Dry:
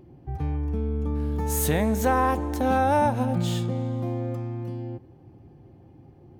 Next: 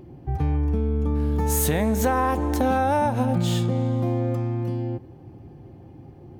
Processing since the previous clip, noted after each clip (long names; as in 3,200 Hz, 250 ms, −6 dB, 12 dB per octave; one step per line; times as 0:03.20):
downward compressor, threshold −24 dBFS, peak gain reduction 7 dB
level +6 dB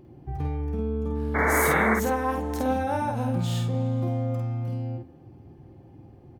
sound drawn into the spectrogram noise, 0:01.34–0:01.95, 230–2,300 Hz −19 dBFS
double-tracking delay 50 ms −2.5 dB
on a send at −22 dB: convolution reverb RT60 1.5 s, pre-delay 86 ms
on the sum: level −6.5 dB